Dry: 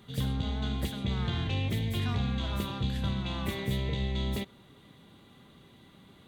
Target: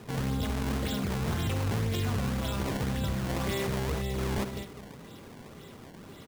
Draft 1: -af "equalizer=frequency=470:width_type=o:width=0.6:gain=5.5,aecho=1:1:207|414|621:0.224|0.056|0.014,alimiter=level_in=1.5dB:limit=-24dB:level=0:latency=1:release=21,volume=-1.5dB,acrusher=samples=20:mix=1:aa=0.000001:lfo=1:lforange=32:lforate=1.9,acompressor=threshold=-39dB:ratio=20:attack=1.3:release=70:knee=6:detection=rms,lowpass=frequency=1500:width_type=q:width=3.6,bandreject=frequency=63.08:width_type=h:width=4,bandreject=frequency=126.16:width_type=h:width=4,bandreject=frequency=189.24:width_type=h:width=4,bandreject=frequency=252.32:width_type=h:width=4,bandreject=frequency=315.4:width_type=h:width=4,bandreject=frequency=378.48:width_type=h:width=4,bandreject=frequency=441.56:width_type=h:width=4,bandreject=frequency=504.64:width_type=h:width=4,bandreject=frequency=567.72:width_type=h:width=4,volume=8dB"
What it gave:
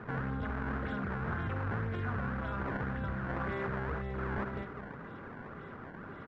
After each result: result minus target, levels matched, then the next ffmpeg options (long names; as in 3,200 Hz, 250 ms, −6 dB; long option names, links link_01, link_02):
2,000 Hz band +7.0 dB; downward compressor: peak gain reduction +6.5 dB
-af "equalizer=frequency=470:width_type=o:width=0.6:gain=5.5,aecho=1:1:207|414|621:0.224|0.056|0.014,alimiter=level_in=1.5dB:limit=-24dB:level=0:latency=1:release=21,volume=-1.5dB,acrusher=samples=20:mix=1:aa=0.000001:lfo=1:lforange=32:lforate=1.9,acompressor=threshold=-39dB:ratio=20:attack=1.3:release=70:knee=6:detection=rms,bandreject=frequency=63.08:width_type=h:width=4,bandreject=frequency=126.16:width_type=h:width=4,bandreject=frequency=189.24:width_type=h:width=4,bandreject=frequency=252.32:width_type=h:width=4,bandreject=frequency=315.4:width_type=h:width=4,bandreject=frequency=378.48:width_type=h:width=4,bandreject=frequency=441.56:width_type=h:width=4,bandreject=frequency=504.64:width_type=h:width=4,bandreject=frequency=567.72:width_type=h:width=4,volume=8dB"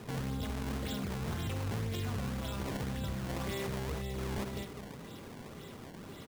downward compressor: peak gain reduction +6.5 dB
-af "equalizer=frequency=470:width_type=o:width=0.6:gain=5.5,aecho=1:1:207|414|621:0.224|0.056|0.014,alimiter=level_in=1.5dB:limit=-24dB:level=0:latency=1:release=21,volume=-1.5dB,acrusher=samples=20:mix=1:aa=0.000001:lfo=1:lforange=32:lforate=1.9,acompressor=threshold=-32dB:ratio=20:attack=1.3:release=70:knee=6:detection=rms,bandreject=frequency=63.08:width_type=h:width=4,bandreject=frequency=126.16:width_type=h:width=4,bandreject=frequency=189.24:width_type=h:width=4,bandreject=frequency=252.32:width_type=h:width=4,bandreject=frequency=315.4:width_type=h:width=4,bandreject=frequency=378.48:width_type=h:width=4,bandreject=frequency=441.56:width_type=h:width=4,bandreject=frequency=504.64:width_type=h:width=4,bandreject=frequency=567.72:width_type=h:width=4,volume=8dB"